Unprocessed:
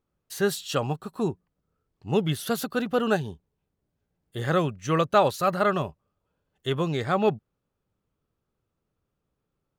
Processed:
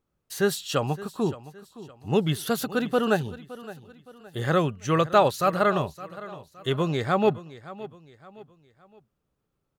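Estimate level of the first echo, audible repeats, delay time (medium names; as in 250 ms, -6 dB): -17.0 dB, 3, 566 ms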